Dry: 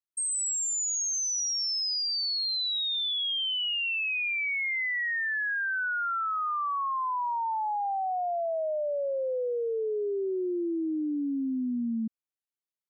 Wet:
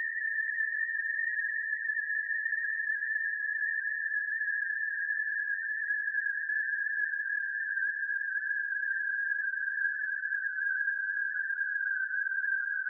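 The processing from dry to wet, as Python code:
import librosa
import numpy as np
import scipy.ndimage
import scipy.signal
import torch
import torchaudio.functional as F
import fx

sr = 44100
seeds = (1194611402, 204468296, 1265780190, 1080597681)

y = x + 10.0 ** (-13.5 / 20.0) * np.pad(x, (int(290 * sr / 1000.0), 0))[:len(x)]
y = fx.paulstretch(y, sr, seeds[0], factor=32.0, window_s=1.0, from_s=5.25)
y = fx.spec_topn(y, sr, count=4)
y = fx.hum_notches(y, sr, base_hz=50, count=4)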